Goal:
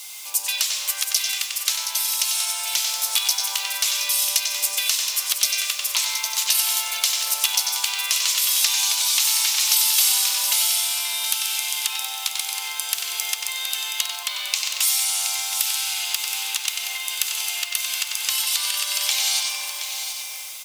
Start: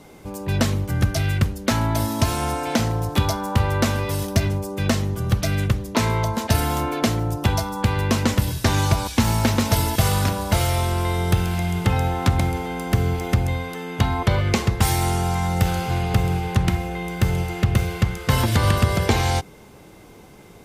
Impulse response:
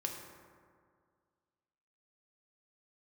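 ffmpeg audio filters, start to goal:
-filter_complex "[0:a]highpass=f=950:w=0.5412,highpass=f=950:w=1.3066,asplit=2[s0][s1];[1:a]atrim=start_sample=2205,lowpass=8400,adelay=93[s2];[s1][s2]afir=irnorm=-1:irlink=0,volume=0.596[s3];[s0][s3]amix=inputs=2:normalize=0,acompressor=threshold=0.0178:ratio=8,acrusher=bits=9:mix=0:aa=0.000001,aexciter=amount=6.3:drive=6.1:freq=2400,dynaudnorm=f=520:g=3:m=1.5,aecho=1:1:722:0.376"

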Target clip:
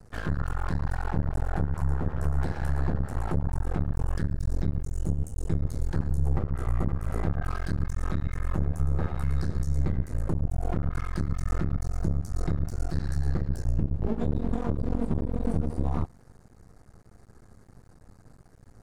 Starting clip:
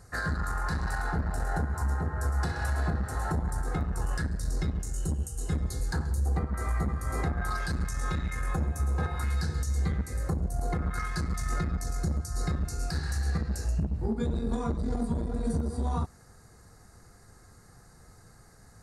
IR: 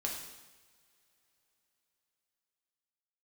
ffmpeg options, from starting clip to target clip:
-af "tiltshelf=f=970:g=6.5,aeval=exprs='max(val(0),0)':c=same"

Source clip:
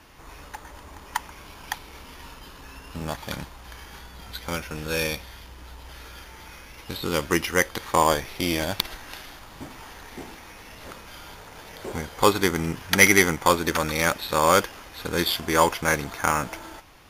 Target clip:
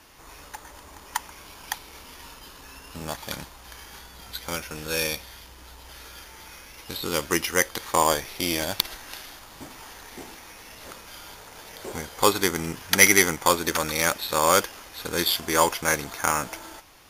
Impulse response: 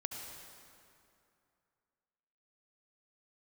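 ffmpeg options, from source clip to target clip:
-af "bass=f=250:g=-4,treble=f=4000:g=6,volume=0.841"

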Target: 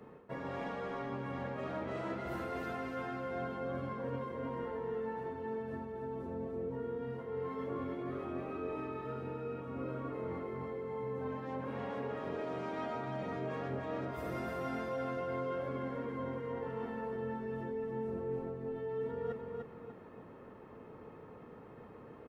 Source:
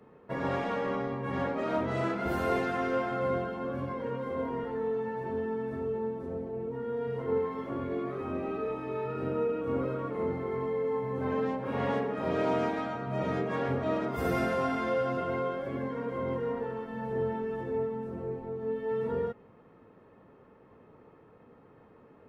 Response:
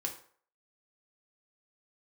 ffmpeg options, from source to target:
-af "areverse,acompressor=threshold=0.01:ratio=10,areverse,aecho=1:1:297|594|891|1188|1485:0.631|0.233|0.0864|0.032|0.0118,volume=1.33"

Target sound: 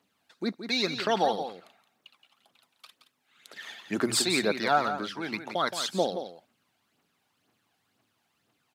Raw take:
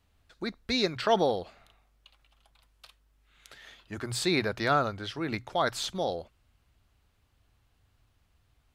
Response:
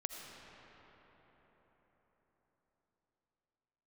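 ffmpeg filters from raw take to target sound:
-filter_complex "[0:a]asettb=1/sr,asplit=3[s0][s1][s2];[s0]atrim=end=3.564[s3];[s1]atrim=start=3.56:end=4.22,asetpts=PTS-STARTPTS,afade=t=in:d=0.004:c=qsin,afade=t=out:st=0.656:d=0.004:c=qsin,acontrast=68[s4];[s2]atrim=start=4.216[s5];[s3][s4]acrossfade=d=0.004:c1=hsin:c2=qsin[s6];[s6][s5]acrossfade=d=0.004:c1=qsin:c2=hsin,aphaser=in_gain=1:out_gain=1:delay=1.4:decay=0.57:speed=2:type=triangular,highpass=f=190:w=0.5412,highpass=f=190:w=1.3066,asplit=2[s7][s8];[s8]aecho=0:1:172:0.335[s9];[s7][s9]amix=inputs=2:normalize=0"

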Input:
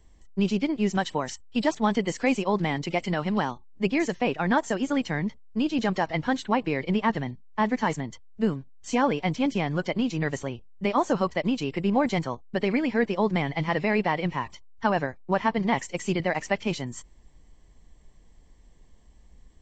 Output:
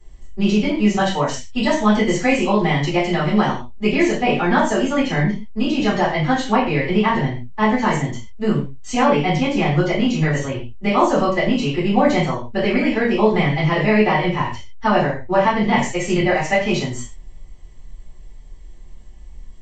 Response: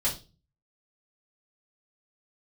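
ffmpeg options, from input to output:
-filter_complex "[1:a]atrim=start_sample=2205,afade=t=out:st=0.15:d=0.01,atrim=end_sample=7056,asetrate=27783,aresample=44100[s0];[0:a][s0]afir=irnorm=-1:irlink=0,volume=0.708"

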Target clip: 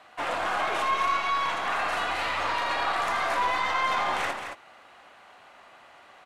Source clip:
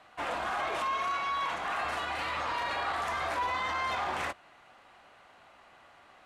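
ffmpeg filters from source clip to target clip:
-af "lowshelf=f=160:g=-9.5,aeval=exprs='0.075*(cos(1*acos(clip(val(0)/0.075,-1,1)))-cos(1*PI/2))+0.0133*(cos(2*acos(clip(val(0)/0.075,-1,1)))-cos(2*PI/2))':c=same,aecho=1:1:80|222:0.335|0.422,volume=1.68"

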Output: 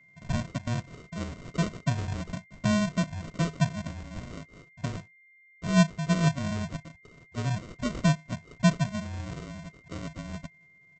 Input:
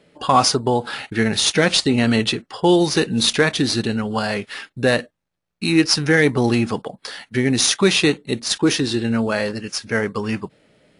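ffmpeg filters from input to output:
-filter_complex "[0:a]asplit=3[s0][s1][s2];[s0]bandpass=f=300:t=q:w=8,volume=1[s3];[s1]bandpass=f=870:t=q:w=8,volume=0.501[s4];[s2]bandpass=f=2240:t=q:w=8,volume=0.355[s5];[s3][s4][s5]amix=inputs=3:normalize=0,highpass=f=240:t=q:w=0.5412,highpass=f=240:t=q:w=1.307,lowpass=f=3600:t=q:w=0.5176,lowpass=f=3600:t=q:w=0.7071,lowpass=f=3600:t=q:w=1.932,afreqshift=-140,aresample=16000,acrusher=samples=19:mix=1:aa=0.000001,aresample=44100,aeval=exprs='val(0)+0.00158*sin(2*PI*2100*n/s)':c=same"

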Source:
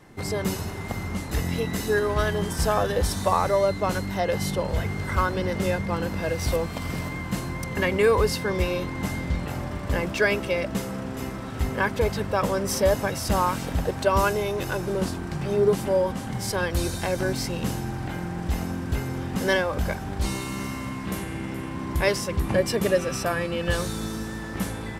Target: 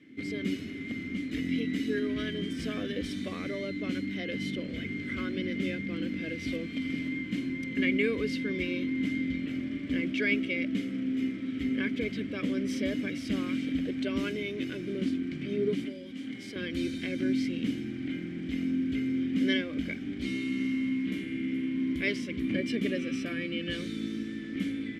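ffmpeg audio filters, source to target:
-filter_complex "[0:a]asettb=1/sr,asplit=3[s0][s1][s2];[s0]atrim=end=15.844[s3];[s1]atrim=start=15.84:end=16.56,asetpts=PTS-STARTPTS,afade=t=in:d=0.004:c=qsin,afade=t=out:st=0.716:d=0.004:c=qsin,acrossover=split=280|2700[s4][s5][s6];[s4]acompressor=threshold=0.00794:ratio=4[s7];[s5]acompressor=threshold=0.0224:ratio=4[s8];[s6]acompressor=threshold=0.02:ratio=4[s9];[s7][s8][s9]amix=inputs=3:normalize=0[s10];[s2]atrim=start=16.556[s11];[s3][s10]acrossfade=d=0.004:c1=hsin:c2=qsin[s12];[s12][s11]acrossfade=d=0.004:c1=qsin:c2=hsin,asplit=3[s13][s14][s15];[s13]bandpass=f=270:t=q:w=8,volume=1[s16];[s14]bandpass=f=2290:t=q:w=8,volume=0.501[s17];[s15]bandpass=f=3010:t=q:w=8,volume=0.355[s18];[s16][s17][s18]amix=inputs=3:normalize=0,volume=2.66"

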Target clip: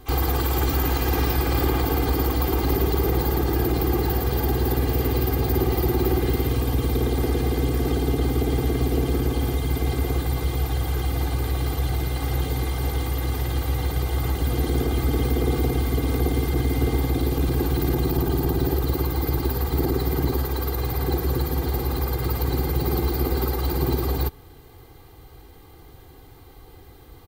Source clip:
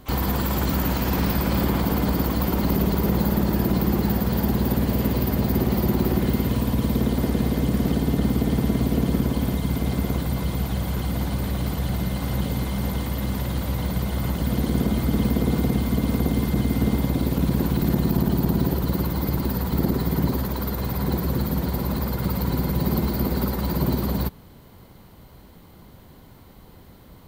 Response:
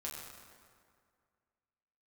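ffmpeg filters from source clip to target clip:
-af "aecho=1:1:2.5:0.94,volume=0.841"

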